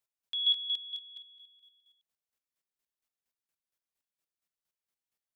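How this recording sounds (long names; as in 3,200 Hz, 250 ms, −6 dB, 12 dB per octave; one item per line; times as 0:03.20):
chopped level 4.3 Hz, depth 65%, duty 25%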